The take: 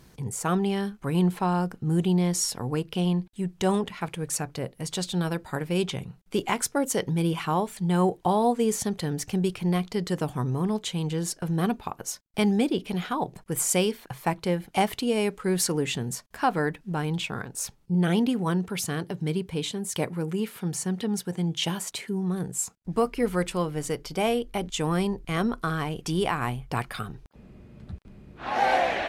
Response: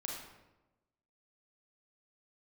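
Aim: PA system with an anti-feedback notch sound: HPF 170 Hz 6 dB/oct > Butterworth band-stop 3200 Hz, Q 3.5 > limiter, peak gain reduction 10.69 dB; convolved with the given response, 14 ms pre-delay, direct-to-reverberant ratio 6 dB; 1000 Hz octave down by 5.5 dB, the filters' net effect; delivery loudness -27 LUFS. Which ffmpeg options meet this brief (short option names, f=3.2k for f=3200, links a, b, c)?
-filter_complex "[0:a]equalizer=f=1k:t=o:g=-7.5,asplit=2[a][b];[1:a]atrim=start_sample=2205,adelay=14[c];[b][c]afir=irnorm=-1:irlink=0,volume=-6dB[d];[a][d]amix=inputs=2:normalize=0,highpass=f=170:p=1,asuperstop=centerf=3200:order=8:qfactor=3.5,volume=6dB,alimiter=limit=-17.5dB:level=0:latency=1"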